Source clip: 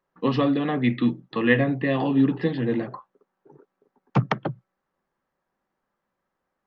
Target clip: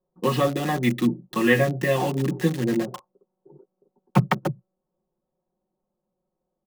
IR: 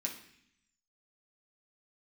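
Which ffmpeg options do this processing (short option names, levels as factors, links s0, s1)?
-filter_complex "[0:a]aecho=1:1:5.5:0.76,acrossover=split=810[s0][s1];[s1]acrusher=bits=5:mix=0:aa=0.000001[s2];[s0][s2]amix=inputs=2:normalize=0"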